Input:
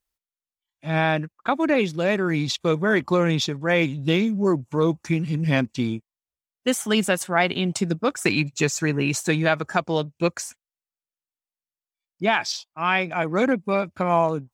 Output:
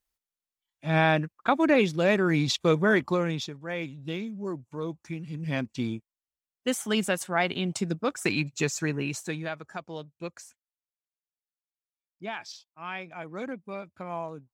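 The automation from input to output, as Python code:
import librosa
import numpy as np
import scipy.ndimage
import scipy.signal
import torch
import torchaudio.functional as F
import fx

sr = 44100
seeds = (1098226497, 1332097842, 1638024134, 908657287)

y = fx.gain(x, sr, db=fx.line((2.86, -1.0), (3.6, -13.0), (5.19, -13.0), (5.85, -5.5), (8.85, -5.5), (9.6, -15.0)))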